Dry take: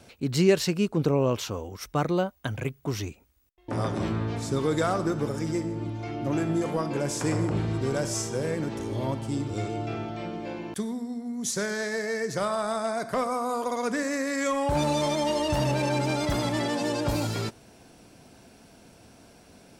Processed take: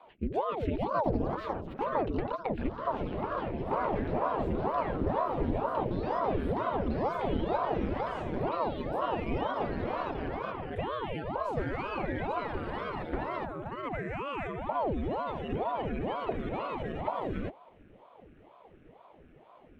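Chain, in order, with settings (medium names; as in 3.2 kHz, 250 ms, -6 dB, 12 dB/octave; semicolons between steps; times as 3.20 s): peaking EQ 150 Hz +14 dB 0.23 oct; compression, threshold -24 dBFS, peak gain reduction 11 dB; static phaser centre 2 kHz, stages 4; ever faster or slower copies 348 ms, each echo +5 st, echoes 3; distance through air 390 m; ring modulator with a swept carrier 470 Hz, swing 85%, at 2.1 Hz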